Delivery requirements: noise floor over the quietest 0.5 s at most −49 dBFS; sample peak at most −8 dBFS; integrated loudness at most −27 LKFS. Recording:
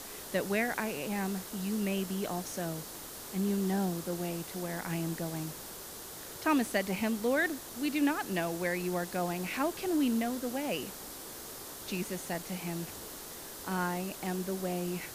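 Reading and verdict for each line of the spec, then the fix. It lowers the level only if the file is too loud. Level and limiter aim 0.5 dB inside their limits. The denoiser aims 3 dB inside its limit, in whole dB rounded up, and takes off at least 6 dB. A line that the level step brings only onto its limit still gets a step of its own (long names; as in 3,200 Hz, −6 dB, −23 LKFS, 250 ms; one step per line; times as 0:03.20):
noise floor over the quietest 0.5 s −45 dBFS: out of spec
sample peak −16.5 dBFS: in spec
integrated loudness −34.0 LKFS: in spec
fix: broadband denoise 7 dB, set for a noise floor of −45 dBFS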